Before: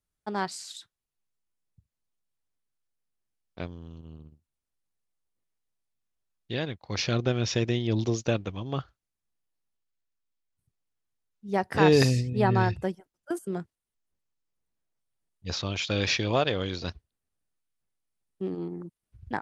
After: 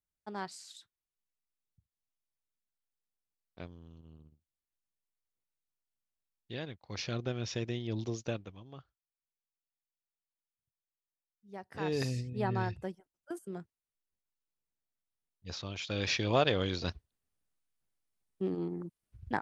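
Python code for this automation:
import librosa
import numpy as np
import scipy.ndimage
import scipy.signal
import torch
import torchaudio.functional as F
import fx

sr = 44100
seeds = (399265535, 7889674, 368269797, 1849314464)

y = fx.gain(x, sr, db=fx.line((8.3, -9.5), (8.75, -19.0), (11.63, -19.0), (12.2, -9.5), (15.79, -9.5), (16.45, -1.5)))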